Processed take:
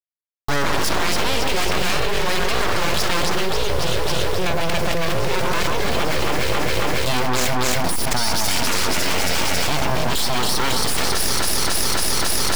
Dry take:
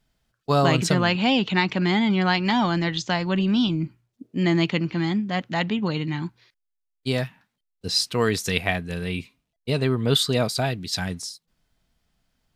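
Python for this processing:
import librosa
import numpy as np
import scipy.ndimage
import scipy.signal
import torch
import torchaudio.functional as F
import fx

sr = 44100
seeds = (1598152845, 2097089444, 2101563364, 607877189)

y = fx.delta_hold(x, sr, step_db=-37.0)
y = fx.peak_eq(y, sr, hz=5100.0, db=9.5, octaves=0.23)
y = 10.0 ** (-22.0 / 20.0) * np.tanh(y / 10.0 ** (-22.0 / 20.0))
y = scipy.signal.sosfilt(scipy.signal.butter(4, 200.0, 'highpass', fs=sr, output='sos'), y)
y = fx.echo_alternate(y, sr, ms=137, hz=1500.0, feedback_pct=79, wet_db=-2)
y = np.abs(y)
y = fx.env_flatten(y, sr, amount_pct=100)
y = y * librosa.db_to_amplitude(4.0)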